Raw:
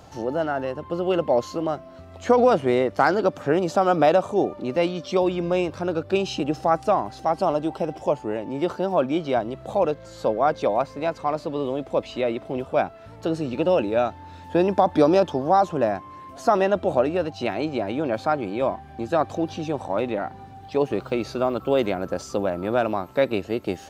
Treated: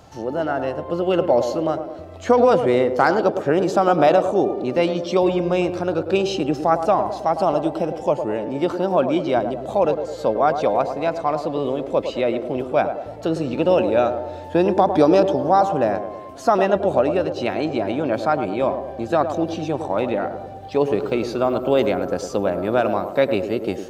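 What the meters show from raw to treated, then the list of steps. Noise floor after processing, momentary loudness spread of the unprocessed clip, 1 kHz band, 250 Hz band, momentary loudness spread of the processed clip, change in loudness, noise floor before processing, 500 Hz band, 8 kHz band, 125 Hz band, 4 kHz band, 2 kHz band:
-35 dBFS, 9 LU, +3.0 dB, +3.0 dB, 8 LU, +3.5 dB, -44 dBFS, +3.5 dB, n/a, +3.0 dB, +2.5 dB, +2.5 dB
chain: AGC gain up to 3 dB; narrowing echo 0.106 s, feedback 60%, band-pass 460 Hz, level -7 dB

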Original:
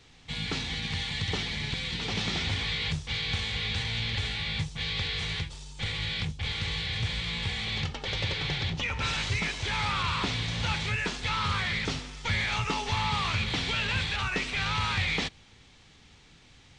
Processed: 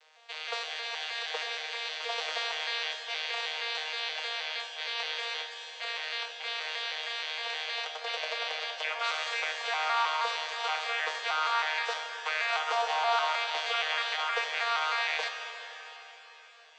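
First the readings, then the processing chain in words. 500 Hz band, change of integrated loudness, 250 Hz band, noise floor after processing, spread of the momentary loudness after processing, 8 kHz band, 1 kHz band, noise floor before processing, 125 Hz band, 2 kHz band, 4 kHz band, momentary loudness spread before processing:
+3.0 dB, -1.5 dB, under -30 dB, -52 dBFS, 7 LU, -3.5 dB, +3.5 dB, -56 dBFS, under -40 dB, -0.5 dB, -2.0 dB, 4 LU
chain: arpeggiated vocoder bare fifth, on D#3, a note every 0.157 s; steep high-pass 520 Hz 48 dB/oct; Schroeder reverb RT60 4 s, combs from 29 ms, DRR 4 dB; gain +4.5 dB

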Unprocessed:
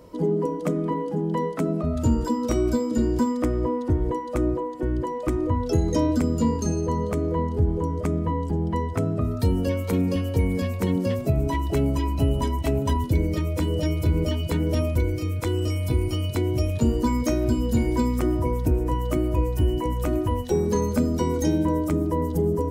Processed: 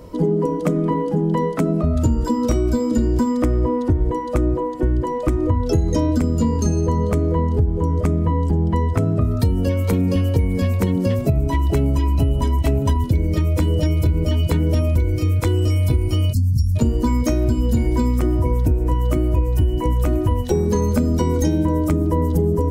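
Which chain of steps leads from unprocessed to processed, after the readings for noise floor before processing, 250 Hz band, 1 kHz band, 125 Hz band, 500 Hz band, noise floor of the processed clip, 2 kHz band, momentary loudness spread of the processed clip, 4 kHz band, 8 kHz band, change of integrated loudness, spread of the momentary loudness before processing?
-30 dBFS, +3.5 dB, +3.0 dB, +6.5 dB, +3.0 dB, -24 dBFS, +2.5 dB, 2 LU, +2.5 dB, +3.0 dB, +5.0 dB, 3 LU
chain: spectral delete 16.33–16.76, 270–4100 Hz; low shelf 120 Hz +8.5 dB; compressor, threshold -20 dBFS, peak gain reduction 9.5 dB; gain +6 dB

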